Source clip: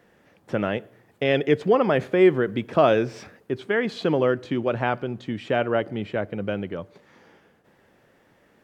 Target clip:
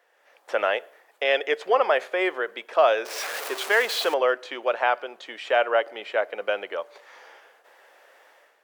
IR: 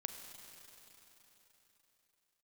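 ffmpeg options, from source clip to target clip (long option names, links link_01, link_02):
-filter_complex "[0:a]asettb=1/sr,asplit=3[link_01][link_02][link_03];[link_01]atrim=end=3.054[link_04];[link_02]atrim=start=3.05:end=4.14,asetpts=PTS-STARTPTS,afade=type=in:duration=0.004:curve=qsin,afade=type=out:start_time=1.086:duration=0.004:curve=qsin,aeval=exprs='val(0)+0.5*0.0316*sgn(val(0))':channel_layout=same[link_05];[link_03]atrim=start=4.136[link_06];[link_04][link_05]acrossfade=duration=0.004:curve1=hsin:curve2=qsin[link_07];[link_07][link_06]acrossfade=duration=0.004:curve1=qsin:curve2=hsin,dynaudnorm=framelen=120:gausssize=5:maxgain=11dB,highpass=frequency=550:width=0.5412,highpass=frequency=550:width=1.3066,volume=-3dB"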